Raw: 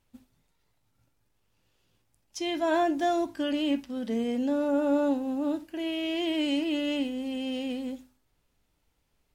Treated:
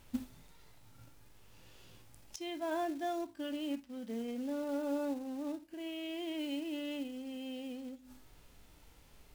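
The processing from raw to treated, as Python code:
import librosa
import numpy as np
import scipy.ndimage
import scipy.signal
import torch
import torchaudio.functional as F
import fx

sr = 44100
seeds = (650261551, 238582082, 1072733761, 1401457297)

y = fx.quant_float(x, sr, bits=2)
y = fx.gate_flip(y, sr, shuts_db=-38.0, range_db=-26)
y = fx.hpss(y, sr, part='harmonic', gain_db=7)
y = F.gain(torch.from_numpy(y), 8.5).numpy()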